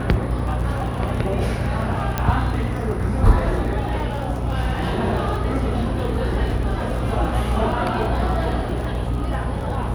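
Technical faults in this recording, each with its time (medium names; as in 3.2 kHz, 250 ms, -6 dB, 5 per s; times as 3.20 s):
buzz 60 Hz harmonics 20 -26 dBFS
crackle 45 per s -29 dBFS
2.18 s: pop -7 dBFS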